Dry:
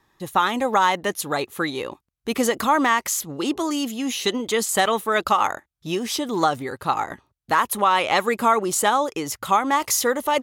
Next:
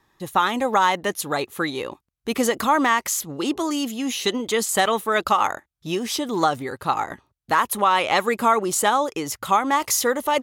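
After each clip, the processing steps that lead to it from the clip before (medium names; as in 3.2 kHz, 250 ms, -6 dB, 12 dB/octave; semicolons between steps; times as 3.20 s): no audible change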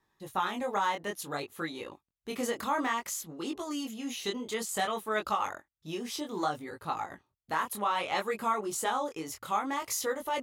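chorus 0.59 Hz, delay 18.5 ms, depth 6.8 ms; trim -8.5 dB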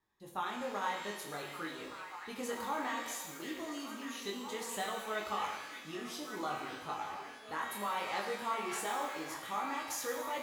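repeats whose band climbs or falls 585 ms, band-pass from 2.6 kHz, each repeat -0.7 oct, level -4 dB; pitch-shifted reverb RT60 1.1 s, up +12 st, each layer -8 dB, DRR 2 dB; trim -8.5 dB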